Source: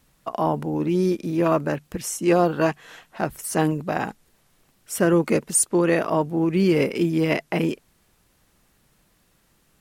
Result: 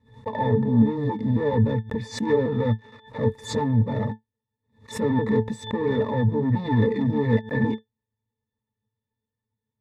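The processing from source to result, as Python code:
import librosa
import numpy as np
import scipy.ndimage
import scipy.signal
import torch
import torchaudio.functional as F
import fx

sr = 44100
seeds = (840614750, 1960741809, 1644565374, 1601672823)

y = fx.pitch_ramps(x, sr, semitones=-5.5, every_ms=273)
y = fx.leveller(y, sr, passes=5)
y = fx.octave_resonator(y, sr, note='A', decay_s=0.13)
y = fx.pre_swell(y, sr, db_per_s=150.0)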